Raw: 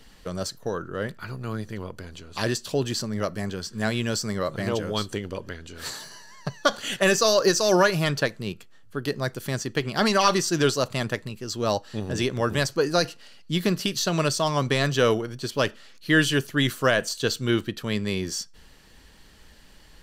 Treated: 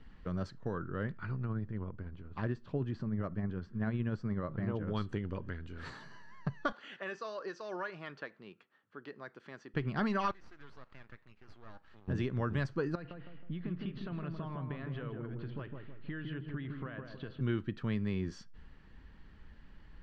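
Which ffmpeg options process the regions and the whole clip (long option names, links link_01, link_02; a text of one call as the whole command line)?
ffmpeg -i in.wav -filter_complex "[0:a]asettb=1/sr,asplit=3[link_01][link_02][link_03];[link_01]atrim=end=1.454[link_04];[link_02]atrim=start=1.45:end=4.88,asetpts=PTS-STARTPTS,afade=type=in:duration=0.004:curve=qsin,afade=type=out:start_time=3.426:duration=0.004:curve=qsin,lowpass=frequency=1500:poles=1,tremolo=f=16:d=0.35[link_05];[link_03]atrim=start=4.876[link_06];[link_04][link_05]acrossfade=duration=0.004:curve1=hsin:curve2=qsin[link_07];[link_07][link_06]acrossfade=duration=0.004:curve1=qsin:curve2=hsin,asettb=1/sr,asplit=3[link_08][link_09][link_10];[link_08]atrim=end=6.724[link_11];[link_09]atrim=start=6.72:end=9.74,asetpts=PTS-STARTPTS,afade=type=in:duration=0.004:curve=qsin,afade=type=out:start_time=3.016:duration=0.004:curve=qsin,acompressor=threshold=-44dB:ratio=1.5:attack=3.2:release=140:knee=1:detection=peak,highpass=410,lowpass=6400[link_12];[link_10]atrim=start=9.736[link_13];[link_11][link_12]acrossfade=duration=0.004:curve1=hsin:curve2=qsin[link_14];[link_14][link_13]acrossfade=duration=0.004:curve1=qsin:curve2=hsin,asettb=1/sr,asplit=3[link_15][link_16][link_17];[link_15]atrim=end=10.314[link_18];[link_16]atrim=start=10.31:end=12.08,asetpts=PTS-STARTPTS,afade=type=in:duration=0.004:curve=qsin,afade=type=out:start_time=1.766:duration=0.004:curve=qsin,acompressor=threshold=-34dB:ratio=5:attack=3.2:release=140:knee=1:detection=peak,highpass=670,lowpass=5300,aeval=exprs='max(val(0),0)':channel_layout=same[link_19];[link_17]atrim=start=12.076[link_20];[link_18][link_19]acrossfade=duration=0.004:curve1=hsin:curve2=qsin[link_21];[link_21][link_20]acrossfade=duration=0.004:curve1=qsin:curve2=hsin,asettb=1/sr,asplit=3[link_22][link_23][link_24];[link_22]atrim=end=12.954[link_25];[link_23]atrim=start=12.95:end=17.41,asetpts=PTS-STARTPTS,afade=type=in:duration=0.004:curve=qsin,afade=type=out:start_time=4.456:duration=0.004:curve=qsin,lowpass=frequency=3500:width=0.5412,lowpass=frequency=3500:width=1.3066,acompressor=threshold=-34dB:ratio=6:attack=3.2:release=140:knee=1:detection=peak,asplit=2[link_26][link_27];[link_27]adelay=159,lowpass=frequency=990:poles=1,volume=-3dB,asplit=2[link_28][link_29];[link_29]adelay=159,lowpass=frequency=990:poles=1,volume=0.48,asplit=2[link_30][link_31];[link_31]adelay=159,lowpass=frequency=990:poles=1,volume=0.48,asplit=2[link_32][link_33];[link_33]adelay=159,lowpass=frequency=990:poles=1,volume=0.48,asplit=2[link_34][link_35];[link_35]adelay=159,lowpass=frequency=990:poles=1,volume=0.48,asplit=2[link_36][link_37];[link_37]adelay=159,lowpass=frequency=990:poles=1,volume=0.48[link_38];[link_26][link_28][link_30][link_32][link_34][link_36][link_38]amix=inputs=7:normalize=0,atrim=end_sample=196686[link_39];[link_24]atrim=start=17.406[link_40];[link_25][link_39]acrossfade=duration=0.004:curve1=hsin:curve2=qsin[link_41];[link_41][link_40]acrossfade=duration=0.004:curve1=qsin:curve2=hsin,lowpass=1400,equalizer=frequency=590:width=0.78:gain=-11,acompressor=threshold=-31dB:ratio=2.5" out.wav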